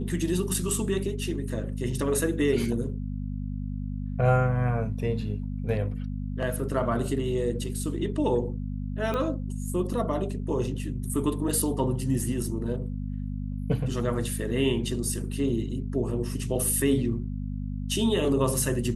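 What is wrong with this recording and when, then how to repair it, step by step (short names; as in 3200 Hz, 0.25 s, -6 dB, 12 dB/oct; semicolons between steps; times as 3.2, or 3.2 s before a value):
hum 50 Hz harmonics 5 -32 dBFS
9.14 pop -18 dBFS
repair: de-click; de-hum 50 Hz, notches 5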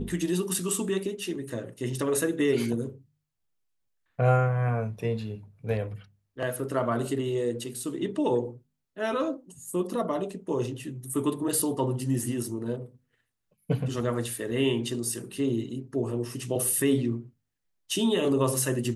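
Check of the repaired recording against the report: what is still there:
none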